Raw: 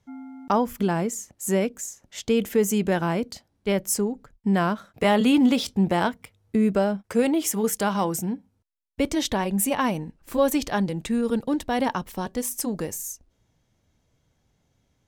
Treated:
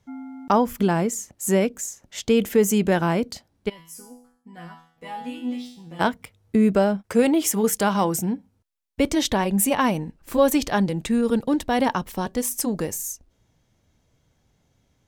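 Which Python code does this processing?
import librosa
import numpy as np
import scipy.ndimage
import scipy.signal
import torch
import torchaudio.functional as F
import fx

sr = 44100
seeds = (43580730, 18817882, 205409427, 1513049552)

y = fx.resonator_bank(x, sr, root=52, chord='fifth', decay_s=0.56, at=(3.68, 5.99), fade=0.02)
y = y * librosa.db_to_amplitude(3.0)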